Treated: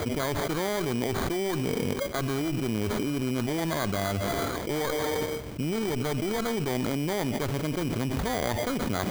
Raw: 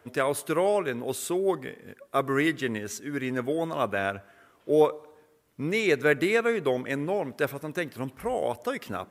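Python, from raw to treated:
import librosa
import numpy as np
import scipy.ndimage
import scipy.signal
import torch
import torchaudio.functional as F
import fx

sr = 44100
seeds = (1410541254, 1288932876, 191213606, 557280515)

y = scipy.signal.medfilt(x, 25)
y = fx.low_shelf(y, sr, hz=120.0, db=6.5)
y = fx.cheby_harmonics(y, sr, harmonics=(6, 8), levels_db=(-16, -27), full_scale_db=-11.0)
y = fx.dynamic_eq(y, sr, hz=500.0, q=3.4, threshold_db=-40.0, ratio=4.0, max_db=-7)
y = fx.sample_hold(y, sr, seeds[0], rate_hz=2700.0, jitter_pct=0)
y = fx.env_flatten(y, sr, amount_pct=100)
y = y * 10.0 ** (-8.5 / 20.0)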